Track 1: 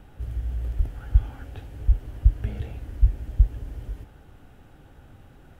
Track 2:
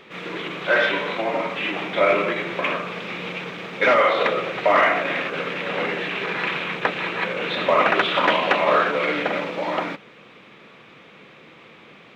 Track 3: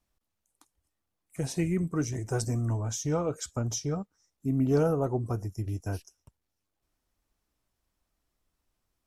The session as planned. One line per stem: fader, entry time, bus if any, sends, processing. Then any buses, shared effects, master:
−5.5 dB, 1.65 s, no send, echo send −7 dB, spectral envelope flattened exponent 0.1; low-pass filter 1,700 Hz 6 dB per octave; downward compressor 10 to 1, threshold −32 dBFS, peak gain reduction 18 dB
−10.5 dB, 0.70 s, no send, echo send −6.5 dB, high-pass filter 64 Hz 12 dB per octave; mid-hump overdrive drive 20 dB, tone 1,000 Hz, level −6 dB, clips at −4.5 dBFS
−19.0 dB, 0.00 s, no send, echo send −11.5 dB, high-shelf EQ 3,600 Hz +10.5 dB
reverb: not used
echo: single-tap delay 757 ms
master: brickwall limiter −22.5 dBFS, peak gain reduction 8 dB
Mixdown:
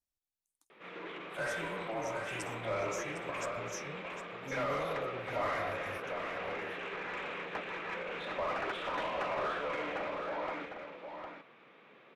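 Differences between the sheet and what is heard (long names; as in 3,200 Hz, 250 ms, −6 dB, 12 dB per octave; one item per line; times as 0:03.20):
stem 1: muted
stem 2 −10.5 dB → −20.5 dB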